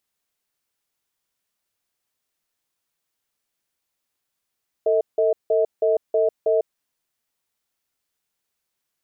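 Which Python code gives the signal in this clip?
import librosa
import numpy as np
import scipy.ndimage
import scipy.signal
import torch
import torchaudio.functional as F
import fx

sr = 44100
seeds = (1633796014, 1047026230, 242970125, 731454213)

y = fx.cadence(sr, length_s=1.89, low_hz=448.0, high_hz=638.0, on_s=0.15, off_s=0.17, level_db=-18.5)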